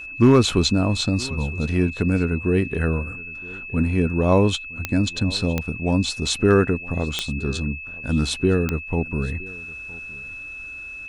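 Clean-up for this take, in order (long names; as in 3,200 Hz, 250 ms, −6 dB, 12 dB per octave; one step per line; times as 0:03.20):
clipped peaks rebuilt −6.5 dBFS
click removal
notch filter 2,600 Hz, Q 30
echo removal 965 ms −22 dB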